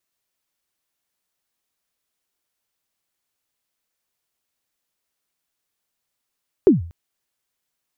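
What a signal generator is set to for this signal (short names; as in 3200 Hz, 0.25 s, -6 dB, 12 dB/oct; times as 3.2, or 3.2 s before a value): kick drum length 0.24 s, from 430 Hz, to 84 Hz, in 0.146 s, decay 0.44 s, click off, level -5 dB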